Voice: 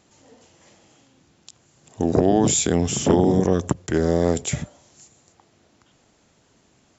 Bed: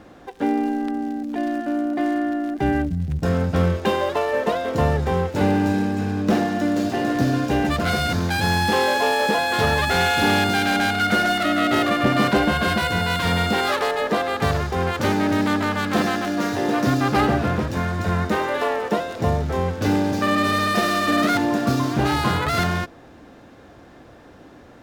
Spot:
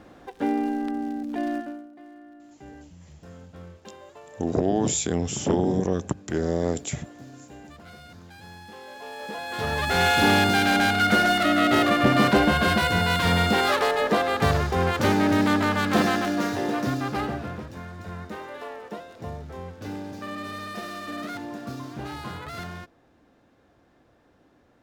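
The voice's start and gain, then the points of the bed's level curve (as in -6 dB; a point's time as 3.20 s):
2.40 s, -5.5 dB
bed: 1.57 s -3.5 dB
1.91 s -24.5 dB
8.81 s -24.5 dB
10.08 s -0.5 dB
16.19 s -0.5 dB
17.80 s -15 dB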